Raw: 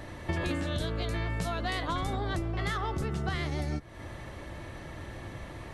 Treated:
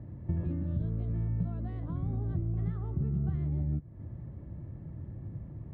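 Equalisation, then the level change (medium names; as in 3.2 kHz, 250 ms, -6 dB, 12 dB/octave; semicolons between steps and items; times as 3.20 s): band-pass filter 150 Hz, Q 1.4; distance through air 210 m; bass shelf 150 Hz +10 dB; 0.0 dB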